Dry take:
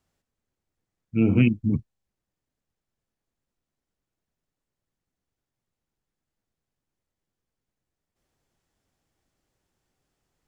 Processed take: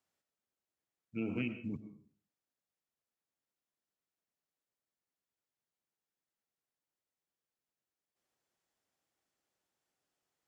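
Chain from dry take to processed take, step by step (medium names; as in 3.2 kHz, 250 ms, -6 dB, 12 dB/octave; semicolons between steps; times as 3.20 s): high-pass 470 Hz 6 dB/octave; compression 2:1, threshold -28 dBFS, peak gain reduction 4.5 dB; on a send: reverberation RT60 0.50 s, pre-delay 70 ms, DRR 9.5 dB; on the sum: trim -7 dB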